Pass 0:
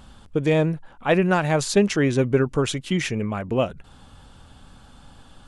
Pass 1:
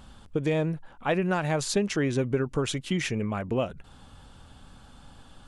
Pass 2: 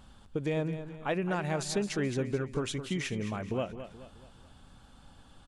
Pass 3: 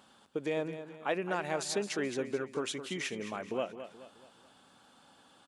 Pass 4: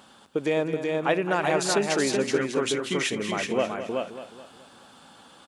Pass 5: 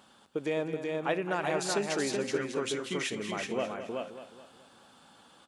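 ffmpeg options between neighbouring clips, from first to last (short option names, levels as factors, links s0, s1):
-af "acompressor=threshold=0.0891:ratio=2.5,volume=0.75"
-af "aecho=1:1:214|428|642|856:0.282|0.116|0.0474|0.0194,volume=0.531"
-af "highpass=300"
-af "aecho=1:1:377:0.668,volume=2.66"
-af "bandreject=f=262.5:t=h:w=4,bandreject=f=525:t=h:w=4,bandreject=f=787.5:t=h:w=4,bandreject=f=1050:t=h:w=4,bandreject=f=1312.5:t=h:w=4,bandreject=f=1575:t=h:w=4,bandreject=f=1837.5:t=h:w=4,bandreject=f=2100:t=h:w=4,bandreject=f=2362.5:t=h:w=4,bandreject=f=2625:t=h:w=4,bandreject=f=2887.5:t=h:w=4,bandreject=f=3150:t=h:w=4,bandreject=f=3412.5:t=h:w=4,bandreject=f=3675:t=h:w=4,bandreject=f=3937.5:t=h:w=4,bandreject=f=4200:t=h:w=4,bandreject=f=4462.5:t=h:w=4,bandreject=f=4725:t=h:w=4,bandreject=f=4987.5:t=h:w=4,bandreject=f=5250:t=h:w=4,bandreject=f=5512.5:t=h:w=4,bandreject=f=5775:t=h:w=4,bandreject=f=6037.5:t=h:w=4,bandreject=f=6300:t=h:w=4,bandreject=f=6562.5:t=h:w=4,bandreject=f=6825:t=h:w=4,bandreject=f=7087.5:t=h:w=4,bandreject=f=7350:t=h:w=4,bandreject=f=7612.5:t=h:w=4,bandreject=f=7875:t=h:w=4,bandreject=f=8137.5:t=h:w=4,bandreject=f=8400:t=h:w=4,bandreject=f=8662.5:t=h:w=4,volume=0.473"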